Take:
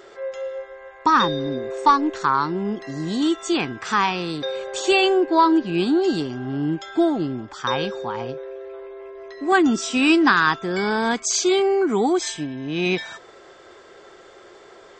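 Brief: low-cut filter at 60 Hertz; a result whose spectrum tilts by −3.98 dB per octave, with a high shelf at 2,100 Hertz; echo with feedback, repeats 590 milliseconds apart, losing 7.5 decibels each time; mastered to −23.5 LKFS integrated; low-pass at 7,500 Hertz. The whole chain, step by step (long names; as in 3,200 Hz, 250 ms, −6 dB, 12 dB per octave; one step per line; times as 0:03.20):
high-pass filter 60 Hz
low-pass filter 7,500 Hz
high-shelf EQ 2,100 Hz −6.5 dB
repeating echo 590 ms, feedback 42%, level −7.5 dB
level −2 dB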